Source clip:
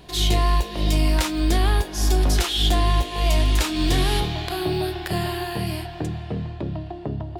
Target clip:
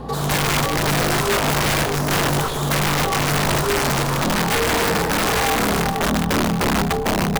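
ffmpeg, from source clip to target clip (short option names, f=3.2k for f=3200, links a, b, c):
-filter_complex "[0:a]asplit=2[a][b];[b]aeval=exprs='0.355*sin(PI/2*7.08*val(0)/0.355)':c=same,volume=-6dB[c];[a][c]amix=inputs=2:normalize=0,highshelf=f=1.6k:t=q:w=1.5:g=-12,afreqshift=93,aeval=exprs='(mod(3.35*val(0)+1,2)-1)/3.35':c=same,aeval=exprs='val(0)+0.0224*(sin(2*PI*60*n/s)+sin(2*PI*2*60*n/s)/2+sin(2*PI*3*60*n/s)/3+sin(2*PI*4*60*n/s)/4+sin(2*PI*5*60*n/s)/5)':c=same,asplit=5[d][e][f][g][h];[e]adelay=150,afreqshift=-150,volume=-10dB[i];[f]adelay=300,afreqshift=-300,volume=-17.5dB[j];[g]adelay=450,afreqshift=-450,volume=-25.1dB[k];[h]adelay=600,afreqshift=-600,volume=-32.6dB[l];[d][i][j][k][l]amix=inputs=5:normalize=0,volume=-3dB"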